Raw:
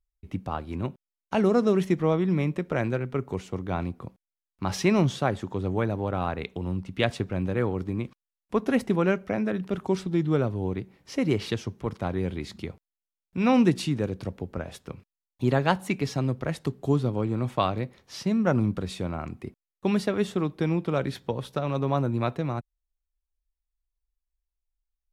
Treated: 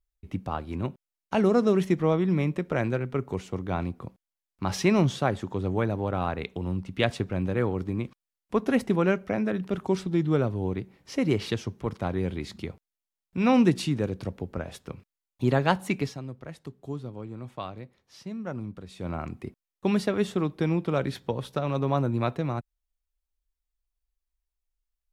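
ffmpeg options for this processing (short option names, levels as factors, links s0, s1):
-filter_complex "[0:a]asplit=3[s0][s1][s2];[s0]atrim=end=16.23,asetpts=PTS-STARTPTS,afade=t=out:st=16.02:d=0.21:c=qua:silence=0.266073[s3];[s1]atrim=start=16.23:end=18.89,asetpts=PTS-STARTPTS,volume=0.266[s4];[s2]atrim=start=18.89,asetpts=PTS-STARTPTS,afade=t=in:d=0.21:c=qua:silence=0.266073[s5];[s3][s4][s5]concat=n=3:v=0:a=1"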